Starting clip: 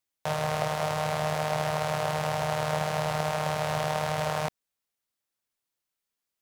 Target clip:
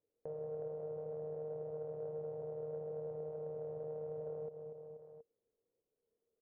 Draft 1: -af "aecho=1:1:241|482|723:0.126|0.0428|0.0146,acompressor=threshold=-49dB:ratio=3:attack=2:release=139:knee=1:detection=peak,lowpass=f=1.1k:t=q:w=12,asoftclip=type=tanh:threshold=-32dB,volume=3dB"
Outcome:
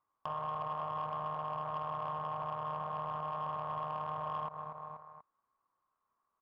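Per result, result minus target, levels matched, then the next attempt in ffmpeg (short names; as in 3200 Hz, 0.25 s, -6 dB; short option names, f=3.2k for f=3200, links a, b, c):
1000 Hz band +18.0 dB; compressor: peak gain reduction -6 dB
-af "aecho=1:1:241|482|723:0.126|0.0428|0.0146,acompressor=threshold=-49dB:ratio=3:attack=2:release=139:knee=1:detection=peak,lowpass=f=460:t=q:w=12,asoftclip=type=tanh:threshold=-32dB,volume=3dB"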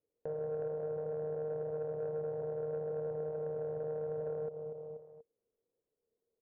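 compressor: peak gain reduction -6 dB
-af "aecho=1:1:241|482|723:0.126|0.0428|0.0146,acompressor=threshold=-58dB:ratio=3:attack=2:release=139:knee=1:detection=peak,lowpass=f=460:t=q:w=12,asoftclip=type=tanh:threshold=-32dB,volume=3dB"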